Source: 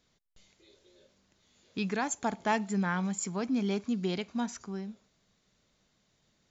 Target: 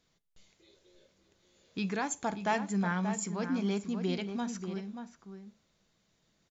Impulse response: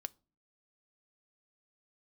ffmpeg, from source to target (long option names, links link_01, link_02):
-filter_complex "[0:a]asplit=2[link_01][link_02];[link_02]adelay=583.1,volume=-8dB,highshelf=frequency=4000:gain=-13.1[link_03];[link_01][link_03]amix=inputs=2:normalize=0[link_04];[1:a]atrim=start_sample=2205,atrim=end_sample=3969,asetrate=32634,aresample=44100[link_05];[link_04][link_05]afir=irnorm=-1:irlink=0"